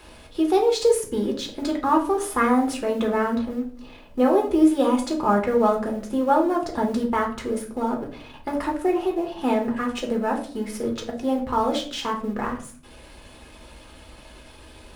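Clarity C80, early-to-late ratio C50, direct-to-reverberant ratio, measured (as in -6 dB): 14.5 dB, 10.0 dB, 0.0 dB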